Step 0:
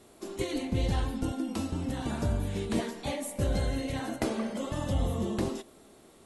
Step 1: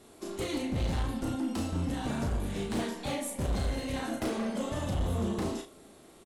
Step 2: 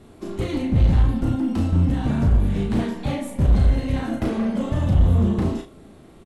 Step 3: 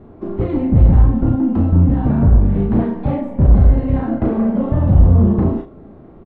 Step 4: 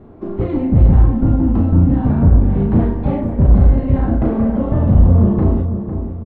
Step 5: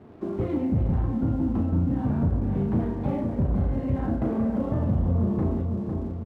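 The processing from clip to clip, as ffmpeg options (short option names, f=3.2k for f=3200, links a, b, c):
-filter_complex "[0:a]volume=29dB,asoftclip=hard,volume=-29dB,asplit=2[a][b];[b]aecho=0:1:35|70:0.596|0.158[c];[a][c]amix=inputs=2:normalize=0"
-af "bass=f=250:g=11,treble=f=4k:g=-9,volume=4.5dB"
-af "lowpass=1.1k,volume=6.5dB"
-filter_complex "[0:a]asplit=2[a][b];[b]adelay=502,lowpass=f=1.4k:p=1,volume=-8.5dB,asplit=2[c][d];[d]adelay=502,lowpass=f=1.4k:p=1,volume=0.39,asplit=2[e][f];[f]adelay=502,lowpass=f=1.4k:p=1,volume=0.39,asplit=2[g][h];[h]adelay=502,lowpass=f=1.4k:p=1,volume=0.39[i];[a][c][e][g][i]amix=inputs=5:normalize=0"
-af "highpass=76,acompressor=threshold=-21dB:ratio=2,aeval=exprs='sgn(val(0))*max(abs(val(0))-0.00266,0)':c=same,volume=-4dB"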